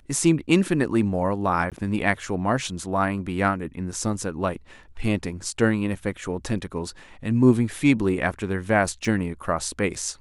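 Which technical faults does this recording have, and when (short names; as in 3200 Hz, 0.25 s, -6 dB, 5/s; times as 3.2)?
1.7–1.72 gap 17 ms
9.05 gap 3.3 ms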